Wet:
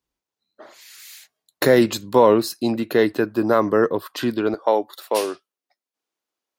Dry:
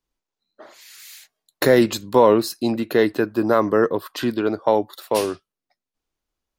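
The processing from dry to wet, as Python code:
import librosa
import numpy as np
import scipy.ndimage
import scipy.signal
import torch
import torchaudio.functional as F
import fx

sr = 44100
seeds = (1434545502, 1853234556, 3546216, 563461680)

y = fx.highpass(x, sr, hz=fx.steps((0.0, 46.0), (4.54, 320.0)), slope=12)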